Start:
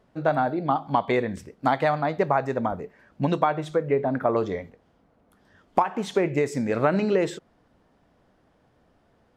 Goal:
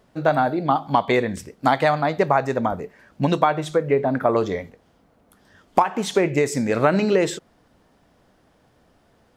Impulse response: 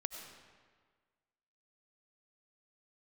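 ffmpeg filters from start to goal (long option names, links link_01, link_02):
-af "highshelf=frequency=3800:gain=8.5,volume=3.5dB"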